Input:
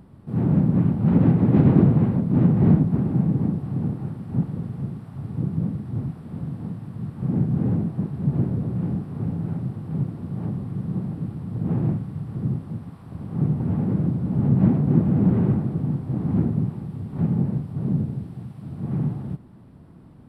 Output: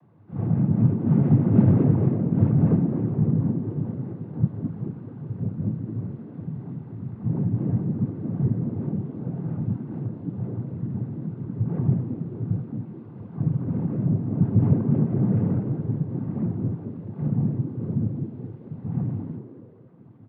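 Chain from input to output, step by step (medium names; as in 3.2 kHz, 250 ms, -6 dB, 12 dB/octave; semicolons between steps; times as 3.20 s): chorus voices 6, 0.86 Hz, delay 24 ms, depth 1.3 ms; noise-vocoded speech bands 16; distance through air 410 m; frequency-shifting echo 214 ms, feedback 31%, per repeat +110 Hz, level -12 dB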